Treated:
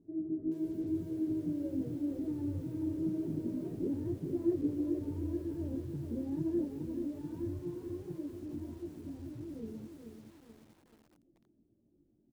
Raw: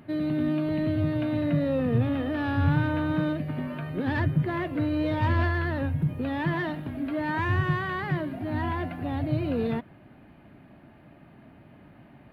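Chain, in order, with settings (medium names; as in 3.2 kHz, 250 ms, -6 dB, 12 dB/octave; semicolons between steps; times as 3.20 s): Doppler pass-by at 4.07 s, 13 m/s, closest 8.2 m; hum notches 50/100/150/200/250 Hz; reverb removal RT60 0.61 s; bass shelf 82 Hz +7.5 dB; compression 6:1, threshold -37 dBFS, peak gain reduction 17.5 dB; resonant low-pass 350 Hz, resonance Q 4.3; chorus voices 6, 1.3 Hz, delay 20 ms, depth 3 ms; frequency-shifting echo 165 ms, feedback 41%, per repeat +77 Hz, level -19.5 dB; bit-crushed delay 432 ms, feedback 55%, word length 10-bit, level -6.5 dB; trim +1 dB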